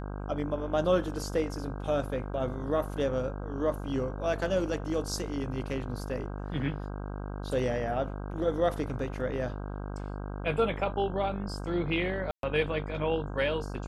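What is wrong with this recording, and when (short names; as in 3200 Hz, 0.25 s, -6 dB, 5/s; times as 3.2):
buzz 50 Hz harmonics 32 -37 dBFS
12.31–12.43 gap 0.122 s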